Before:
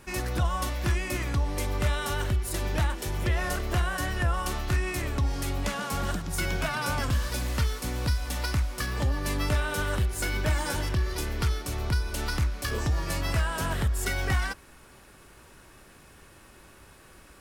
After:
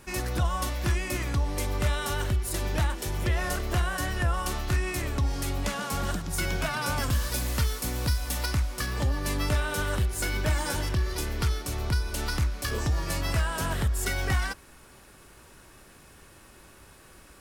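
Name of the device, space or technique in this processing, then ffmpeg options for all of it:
exciter from parts: -filter_complex "[0:a]asettb=1/sr,asplit=3[link_01][link_02][link_03];[link_01]atrim=end=6.964[link_04];[link_02]atrim=start=6.96:end=8.46,asetpts=PTS-STARTPTS,afade=type=in:duration=0.004:curve=qsin,afade=type=out:start_time=1.496:duration=0.004:curve=qsin,highshelf=frequency=10000:gain=8[link_05];[link_03]atrim=start=8.456[link_06];[link_04][link_05]acrossfade=duration=0.004:curve1=hsin:curve2=qsin[link_07];[link_07][link_06]acrossfade=duration=0.004:curve1=qsin:curve2=hsin,asplit=2[link_08][link_09];[link_09]highpass=3100,asoftclip=type=tanh:threshold=-31.5dB,volume=-11dB[link_10];[link_08][link_10]amix=inputs=2:normalize=0"

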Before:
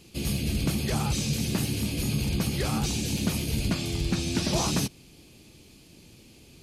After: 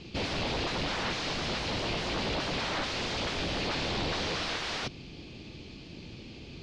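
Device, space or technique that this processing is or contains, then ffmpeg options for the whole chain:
synthesiser wavefolder: -af "aeval=exprs='0.0224*(abs(mod(val(0)/0.0224+3,4)-2)-1)':channel_layout=same,lowpass=frequency=4700:width=0.5412,lowpass=frequency=4700:width=1.3066,volume=7.5dB"

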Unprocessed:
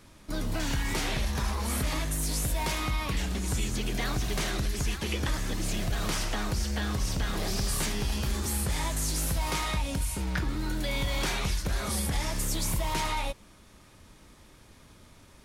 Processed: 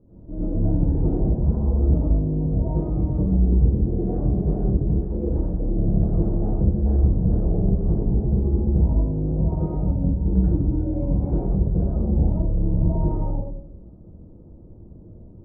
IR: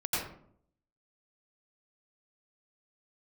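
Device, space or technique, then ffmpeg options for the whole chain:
next room: -filter_complex "[0:a]lowpass=frequency=520:width=0.5412,lowpass=frequency=520:width=1.3066[link_01];[1:a]atrim=start_sample=2205[link_02];[link_01][link_02]afir=irnorm=-1:irlink=0,asettb=1/sr,asplit=3[link_03][link_04][link_05];[link_03]atrim=end=5.014[link_06];[link_04]atrim=start=5.01:end=5.78,asetpts=PTS-STARTPTS,afade=type=in:duration=0.004:curve=qsin,afade=type=out:start_time=0.766:duration=0.004:curve=qsin,equalizer=frequency=110:width_type=o:width=2.1:gain=-6.5[link_07];[link_05]atrim=start=5.776[link_08];[link_06][link_07]acrossfade=duration=0.004:curve1=hsin:curve2=qsin[link_09];[link_09][link_08]acrossfade=duration=0.004:curve1=qsin:curve2=hsin,volume=3dB"

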